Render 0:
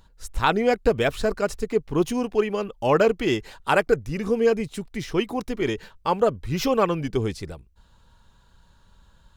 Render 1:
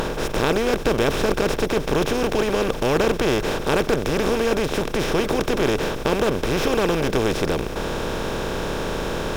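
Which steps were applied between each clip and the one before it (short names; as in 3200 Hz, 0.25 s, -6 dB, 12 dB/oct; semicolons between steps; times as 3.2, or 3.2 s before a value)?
per-bin compression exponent 0.2; dynamic EQ 950 Hz, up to -7 dB, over -26 dBFS, Q 0.78; gain -4.5 dB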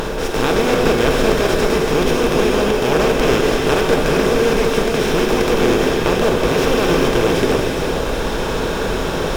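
reverb, pre-delay 3 ms, DRR -2 dB; gain +1.5 dB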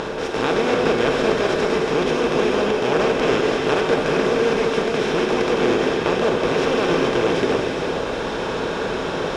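HPF 200 Hz 6 dB/oct; air absorption 86 m; gain -2 dB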